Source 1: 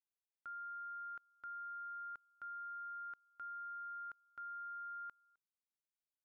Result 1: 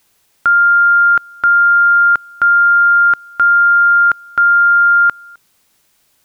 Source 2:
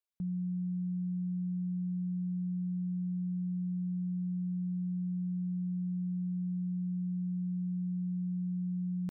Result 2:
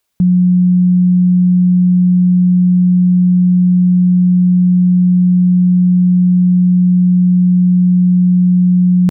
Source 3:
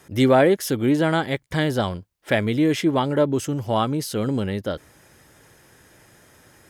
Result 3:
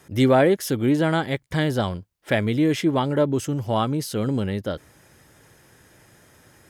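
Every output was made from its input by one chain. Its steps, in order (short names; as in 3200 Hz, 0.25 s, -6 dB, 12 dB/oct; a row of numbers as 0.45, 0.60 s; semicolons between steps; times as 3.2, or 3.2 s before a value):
bell 120 Hz +2.5 dB 1.8 oct; normalise peaks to -6 dBFS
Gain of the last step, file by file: +37.5, +23.0, -1.5 dB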